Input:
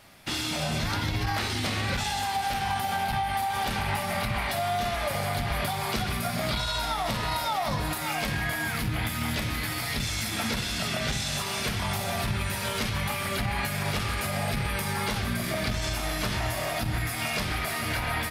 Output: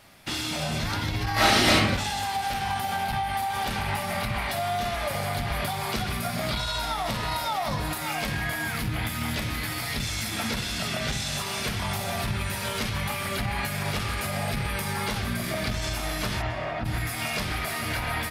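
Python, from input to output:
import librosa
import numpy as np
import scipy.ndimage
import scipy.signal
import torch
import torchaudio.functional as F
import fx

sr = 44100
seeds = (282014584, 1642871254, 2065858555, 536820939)

y = fx.reverb_throw(x, sr, start_s=1.33, length_s=0.41, rt60_s=0.82, drr_db=-11.0)
y = fx.lowpass(y, sr, hz=fx.line((16.41, 3600.0), (16.84, 1900.0)), slope=12, at=(16.41, 16.84), fade=0.02)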